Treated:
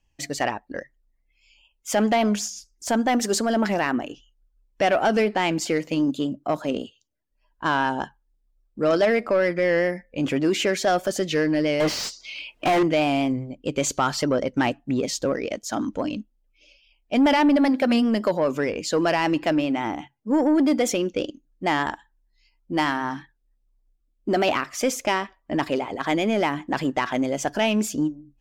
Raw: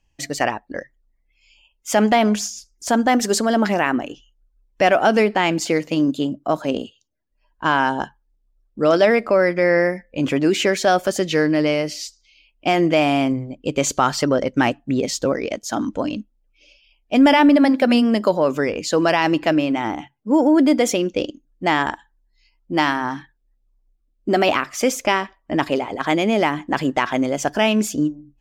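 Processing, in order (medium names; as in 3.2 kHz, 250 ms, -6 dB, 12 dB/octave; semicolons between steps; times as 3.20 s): vibrato 5 Hz 34 cents; saturation -9 dBFS, distortion -19 dB; 11.80–12.83 s: overdrive pedal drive 34 dB, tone 1.7 kHz, clips at -10 dBFS; trim -3 dB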